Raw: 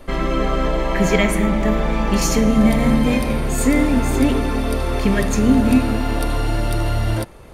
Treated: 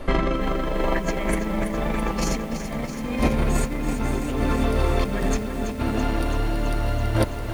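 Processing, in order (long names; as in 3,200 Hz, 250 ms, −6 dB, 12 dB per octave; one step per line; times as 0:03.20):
low-pass filter 3,900 Hz 6 dB per octave
compressor whose output falls as the input rises −22 dBFS, ratio −0.5
feedback echo at a low word length 331 ms, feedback 80%, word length 7 bits, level −9 dB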